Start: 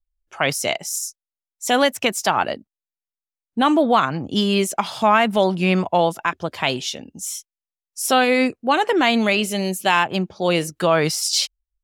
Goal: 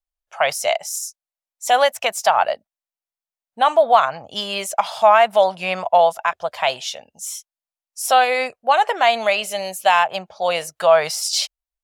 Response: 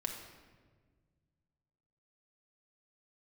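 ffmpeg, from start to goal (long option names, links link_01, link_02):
-af "lowshelf=frequency=450:width_type=q:width=3:gain=-12.5,volume=-1dB"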